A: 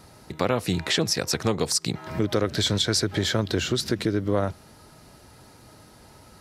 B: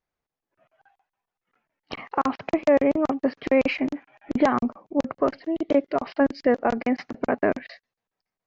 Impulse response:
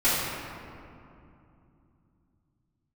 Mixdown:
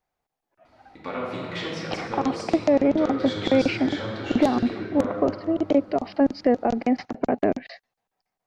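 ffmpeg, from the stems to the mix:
-filter_complex "[0:a]lowpass=3.1k,lowshelf=f=270:g=-9,flanger=delay=3:depth=3.4:regen=-53:speed=0.55:shape=sinusoidal,adelay=650,volume=-8dB,asplit=2[a][b];[b]volume=-7.5dB[c];[1:a]equalizer=f=760:w=2.9:g=8.5,acrossover=split=490|3000[d][e][f];[e]acompressor=threshold=-33dB:ratio=5[g];[d][g][f]amix=inputs=3:normalize=0,volume=2.5dB[h];[2:a]atrim=start_sample=2205[i];[c][i]afir=irnorm=-1:irlink=0[j];[a][h][j]amix=inputs=3:normalize=0,aeval=exprs='0.355*(abs(mod(val(0)/0.355+3,4)-2)-1)':c=same"

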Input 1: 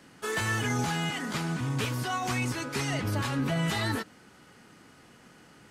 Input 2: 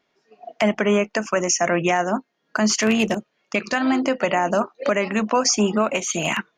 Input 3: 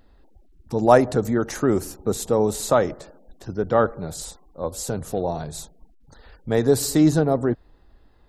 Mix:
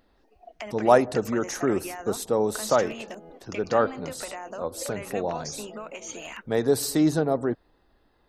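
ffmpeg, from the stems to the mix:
-filter_complex "[0:a]lowpass=f=520:t=q:w=4.9,adelay=2200,volume=-9.5dB[a];[1:a]alimiter=limit=-13dB:level=0:latency=1:release=237,dynaudnorm=f=200:g=7:m=10dB,volume=-12dB,asplit=2[b][c];[2:a]bandreject=f=7.1k:w=8.5,volume=-2.5dB[d];[c]apad=whole_len=348616[e];[a][e]sidechaingate=range=-33dB:threshold=-54dB:ratio=16:detection=peak[f];[f][b]amix=inputs=2:normalize=0,highpass=230,acompressor=threshold=-34dB:ratio=6,volume=0dB[g];[d][g]amix=inputs=2:normalize=0,lowshelf=f=130:g=-12"

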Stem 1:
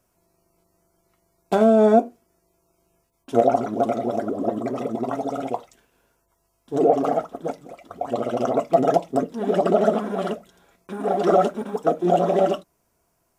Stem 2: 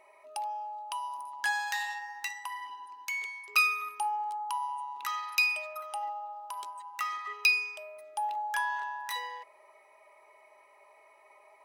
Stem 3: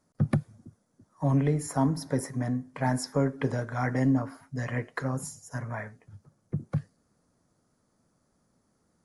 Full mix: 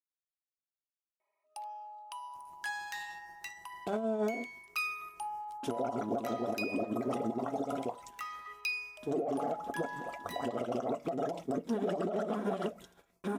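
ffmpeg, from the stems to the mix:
-filter_complex "[0:a]alimiter=limit=-12.5dB:level=0:latency=1:release=28,acompressor=threshold=-25dB:ratio=10,tremolo=f=6.3:d=0.61,adelay=2350,volume=1.5dB[a];[1:a]agate=range=-7dB:threshold=-50dB:ratio=16:detection=peak,adelay=1200,volume=-8dB[b];[a][b]amix=inputs=2:normalize=0,agate=range=-10dB:threshold=-55dB:ratio=16:detection=peak,alimiter=level_in=0.5dB:limit=-24dB:level=0:latency=1:release=114,volume=-0.5dB"

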